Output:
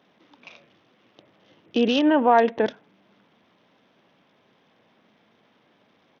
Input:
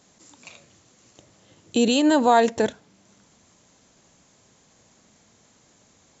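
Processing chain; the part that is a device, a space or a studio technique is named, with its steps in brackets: Bluetooth headset (high-pass 190 Hz 12 dB/octave; resampled via 8 kHz; SBC 64 kbps 48 kHz)

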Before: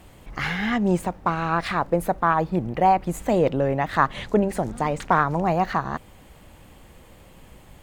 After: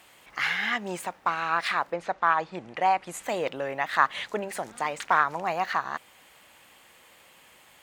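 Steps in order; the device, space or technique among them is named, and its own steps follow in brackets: 1.91–3.22 s: low-pass 5.5 kHz -> 12 kHz 24 dB/octave; filter by subtraction (in parallel: low-pass 2 kHz 12 dB/octave + polarity flip)

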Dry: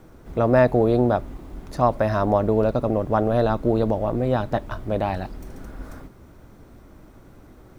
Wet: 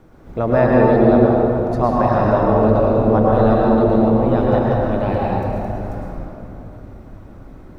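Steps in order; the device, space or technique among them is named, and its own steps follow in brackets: swimming-pool hall (reverberation RT60 3.4 s, pre-delay 99 ms, DRR -4.5 dB; treble shelf 4.4 kHz -8 dB)

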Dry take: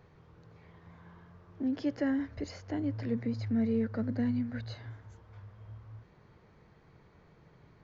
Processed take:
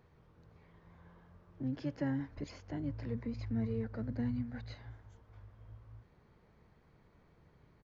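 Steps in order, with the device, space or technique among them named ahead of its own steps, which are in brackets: octave pedal (harmony voices -12 st -4 dB); trim -6.5 dB

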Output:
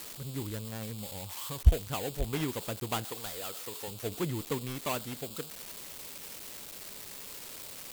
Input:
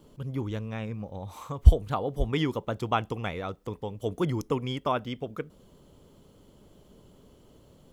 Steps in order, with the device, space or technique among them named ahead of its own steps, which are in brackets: 3.04–3.88 s: tone controls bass -13 dB, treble -1 dB; budget class-D amplifier (dead-time distortion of 0.26 ms; zero-crossing glitches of -18 dBFS); trim -5.5 dB

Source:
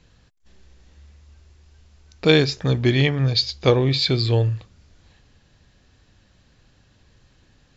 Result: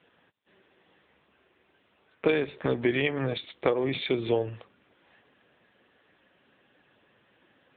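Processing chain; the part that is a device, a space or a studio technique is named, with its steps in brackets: 3.05–4.45 s: gate with hold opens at -38 dBFS; voicemail (band-pass 330–3300 Hz; compression 8:1, threshold -25 dBFS, peak gain reduction 13 dB; trim +4.5 dB; AMR-NB 6.7 kbps 8 kHz)

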